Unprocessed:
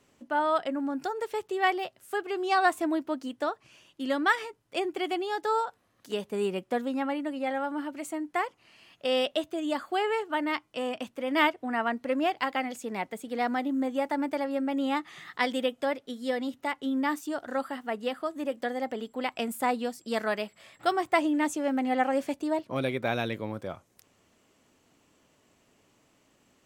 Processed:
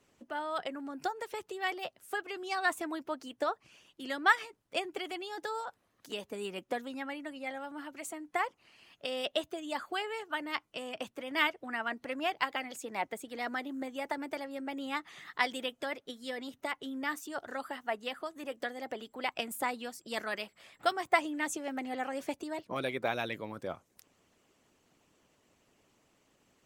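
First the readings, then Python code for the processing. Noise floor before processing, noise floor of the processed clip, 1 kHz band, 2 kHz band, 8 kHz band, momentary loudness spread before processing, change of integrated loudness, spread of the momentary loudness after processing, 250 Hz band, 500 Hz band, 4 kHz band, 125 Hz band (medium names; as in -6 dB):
-68 dBFS, -74 dBFS, -6.0 dB, -2.5 dB, -1.0 dB, 9 LU, -6.0 dB, 10 LU, -10.5 dB, -8.0 dB, -2.5 dB, -10.0 dB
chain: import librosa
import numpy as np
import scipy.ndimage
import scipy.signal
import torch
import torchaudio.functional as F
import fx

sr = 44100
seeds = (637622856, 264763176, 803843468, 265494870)

y = fx.hpss(x, sr, part='harmonic', gain_db=-11)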